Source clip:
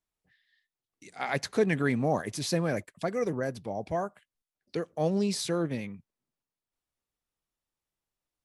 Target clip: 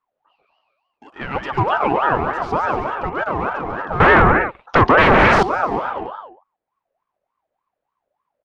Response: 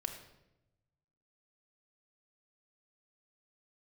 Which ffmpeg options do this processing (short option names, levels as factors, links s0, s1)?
-filter_complex "[0:a]aecho=1:1:140|245|323.8|382.8|427.1:0.631|0.398|0.251|0.158|0.1,asplit=2[s0][s1];[s1]aeval=exprs='(mod(26.6*val(0)+1,2)-1)/26.6':c=same,volume=0.316[s2];[s0][s2]amix=inputs=2:normalize=0,lowshelf=f=180:g=10.5,asettb=1/sr,asplit=3[s3][s4][s5];[s3]atrim=end=4.004[s6];[s4]atrim=start=4:end=5.43,asetpts=PTS-STARTPTS,afade=t=in:d=0.004:c=qsin,afade=t=out:st=1.426:d=0.004:c=qsin,aeval=exprs='0.282*sin(PI/2*6.31*val(0)/0.282)':c=same[s7];[s5]atrim=start=5.426[s8];[s6][s7]acrossfade=d=0.004:c1=hsin:c2=qsin[s9];[s9][s8]acrossfade=d=0.004:c1=qsin:c2=hsin,lowpass=1800,aeval=exprs='val(0)*sin(2*PI*830*n/s+830*0.35/3.4*sin(2*PI*3.4*n/s))':c=same,volume=2.11"